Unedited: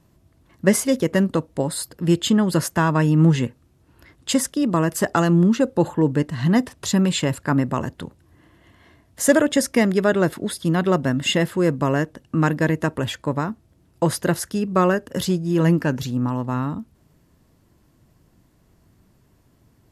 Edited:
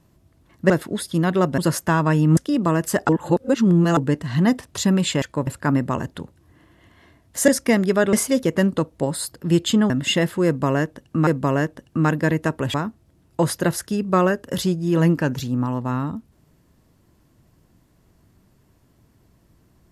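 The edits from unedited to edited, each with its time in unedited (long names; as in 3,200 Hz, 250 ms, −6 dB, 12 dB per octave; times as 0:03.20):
0:00.70–0:02.47: swap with 0:10.21–0:11.09
0:03.26–0:04.45: remove
0:05.17–0:06.05: reverse
0:09.31–0:09.56: remove
0:11.65–0:12.46: repeat, 2 plays
0:13.12–0:13.37: move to 0:07.30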